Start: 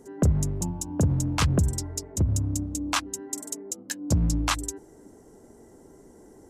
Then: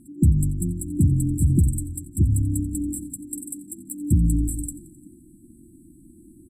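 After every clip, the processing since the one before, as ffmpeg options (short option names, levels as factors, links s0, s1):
-filter_complex "[0:a]asplit=7[s0][s1][s2][s3][s4][s5][s6];[s1]adelay=87,afreqshift=-46,volume=0.126[s7];[s2]adelay=174,afreqshift=-92,volume=0.0794[s8];[s3]adelay=261,afreqshift=-138,volume=0.0501[s9];[s4]adelay=348,afreqshift=-184,volume=0.0316[s10];[s5]adelay=435,afreqshift=-230,volume=0.0197[s11];[s6]adelay=522,afreqshift=-276,volume=0.0124[s12];[s0][s7][s8][s9][s10][s11][s12]amix=inputs=7:normalize=0,afftfilt=real='re*(1-between(b*sr/4096,360,7600))':imag='im*(1-between(b*sr/4096,360,7600))':win_size=4096:overlap=0.75,volume=1.68"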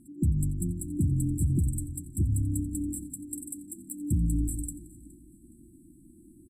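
-af "alimiter=limit=0.224:level=0:latency=1:release=159,aecho=1:1:417|834|1251:0.075|0.03|0.012,volume=0.562"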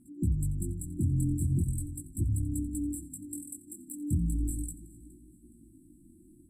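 -af "flanger=delay=16.5:depth=7.1:speed=0.38"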